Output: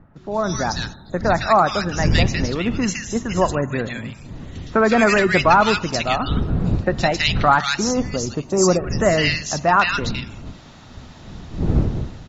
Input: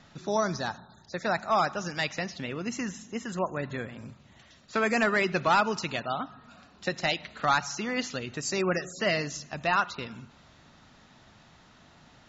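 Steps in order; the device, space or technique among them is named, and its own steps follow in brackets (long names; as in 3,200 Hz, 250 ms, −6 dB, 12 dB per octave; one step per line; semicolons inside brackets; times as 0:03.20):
0:07.76–0:08.84: flat-topped bell 2,500 Hz −14 dB
multiband delay without the direct sound lows, highs 160 ms, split 1,700 Hz
smartphone video outdoors (wind on the microphone 150 Hz −38 dBFS; automatic gain control gain up to 12.5 dB; AAC 96 kbit/s 48,000 Hz)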